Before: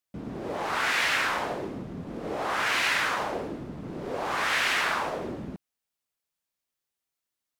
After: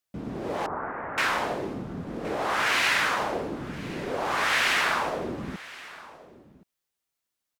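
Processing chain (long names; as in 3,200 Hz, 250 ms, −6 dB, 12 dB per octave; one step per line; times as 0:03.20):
0:00.66–0:01.18: Bessel low-pass filter 820 Hz, order 6
single-tap delay 1,071 ms −19 dB
level +2 dB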